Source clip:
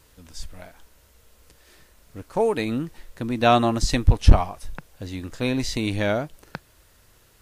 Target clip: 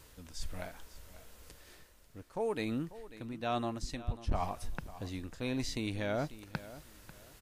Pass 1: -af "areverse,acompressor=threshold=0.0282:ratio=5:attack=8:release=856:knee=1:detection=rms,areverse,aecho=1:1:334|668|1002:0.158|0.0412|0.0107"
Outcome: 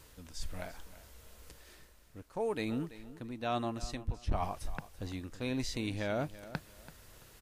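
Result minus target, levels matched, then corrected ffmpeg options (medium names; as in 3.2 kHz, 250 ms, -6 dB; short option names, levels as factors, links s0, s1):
echo 209 ms early
-af "areverse,acompressor=threshold=0.0282:ratio=5:attack=8:release=856:knee=1:detection=rms,areverse,aecho=1:1:543|1086|1629:0.158|0.0412|0.0107"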